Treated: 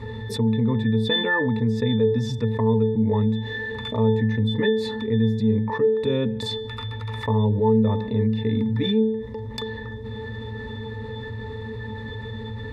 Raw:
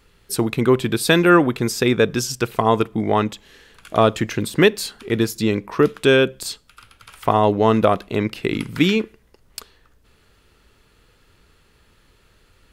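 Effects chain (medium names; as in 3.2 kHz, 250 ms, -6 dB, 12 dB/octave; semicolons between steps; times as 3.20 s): pitch-class resonator A, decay 0.25 s; level flattener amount 70%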